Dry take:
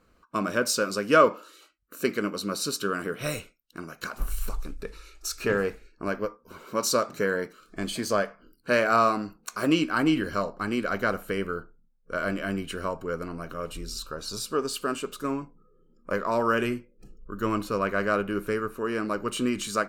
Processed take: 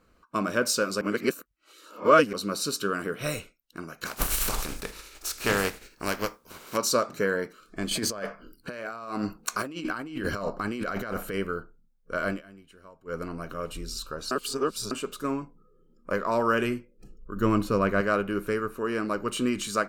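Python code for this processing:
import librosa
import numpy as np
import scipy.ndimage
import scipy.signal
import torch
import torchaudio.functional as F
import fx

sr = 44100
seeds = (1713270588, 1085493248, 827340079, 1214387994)

y = fx.spec_flatten(x, sr, power=0.52, at=(4.05, 6.76), fade=0.02)
y = fx.over_compress(y, sr, threshold_db=-33.0, ratio=-1.0, at=(7.91, 11.35))
y = fx.low_shelf(y, sr, hz=350.0, db=7.5, at=(17.36, 18.01))
y = fx.edit(y, sr, fx.reverse_span(start_s=1.01, length_s=1.32),
    fx.fade_down_up(start_s=12.27, length_s=0.93, db=-20.0, fade_s=0.15, curve='qsin'),
    fx.reverse_span(start_s=14.31, length_s=0.6), tone=tone)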